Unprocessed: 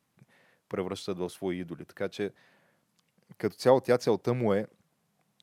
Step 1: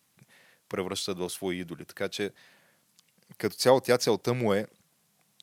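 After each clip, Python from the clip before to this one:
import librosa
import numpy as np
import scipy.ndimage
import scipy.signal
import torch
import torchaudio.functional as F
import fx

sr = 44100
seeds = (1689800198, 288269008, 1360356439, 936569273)

y = fx.high_shelf(x, sr, hz=2300.0, db=12.0)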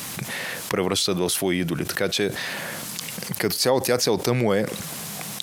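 y = fx.env_flatten(x, sr, amount_pct=70)
y = y * 10.0 ** (-1.0 / 20.0)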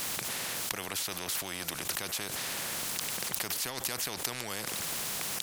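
y = fx.spectral_comp(x, sr, ratio=4.0)
y = y * 10.0 ** (-3.5 / 20.0)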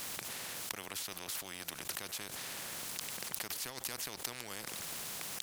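y = np.sign(x) * np.maximum(np.abs(x) - 10.0 ** (-45.5 / 20.0), 0.0)
y = y * 10.0 ** (-5.0 / 20.0)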